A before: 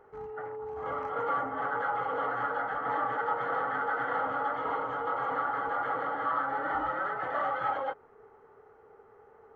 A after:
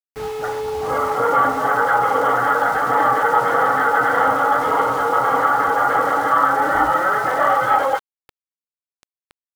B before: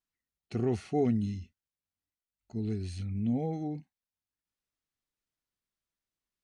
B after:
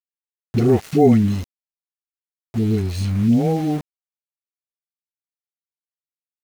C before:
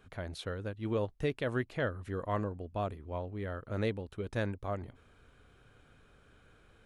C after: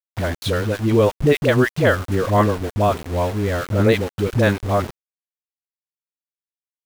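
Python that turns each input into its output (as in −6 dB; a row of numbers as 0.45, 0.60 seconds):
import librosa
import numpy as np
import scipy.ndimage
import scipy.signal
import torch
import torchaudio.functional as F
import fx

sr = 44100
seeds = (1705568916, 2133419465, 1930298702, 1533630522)

y = scipy.signal.medfilt(x, 3)
y = fx.dispersion(y, sr, late='highs', ms=68.0, hz=450.0)
y = np.where(np.abs(y) >= 10.0 ** (-45.0 / 20.0), y, 0.0)
y = librosa.util.normalize(y) * 10.0 ** (-3 / 20.0)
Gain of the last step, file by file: +14.5, +14.0, +17.5 decibels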